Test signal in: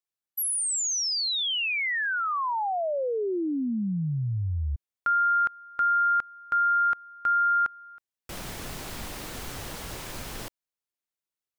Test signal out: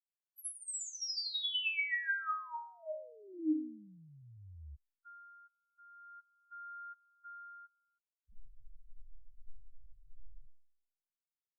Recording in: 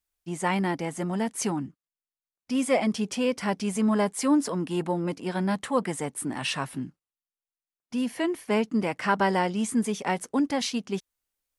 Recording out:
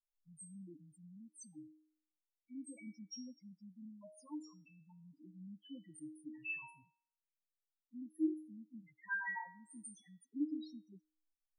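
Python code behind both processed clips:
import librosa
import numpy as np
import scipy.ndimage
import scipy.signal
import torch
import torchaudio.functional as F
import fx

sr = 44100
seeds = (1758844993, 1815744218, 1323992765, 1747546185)

y = fx.phaser_stages(x, sr, stages=2, low_hz=310.0, high_hz=1000.0, hz=0.4, feedback_pct=35)
y = fx.spec_topn(y, sr, count=2)
y = fx.stiff_resonator(y, sr, f0_hz=310.0, decay_s=0.58, stiffness=0.002)
y = F.gain(torch.from_numpy(y), 11.0).numpy()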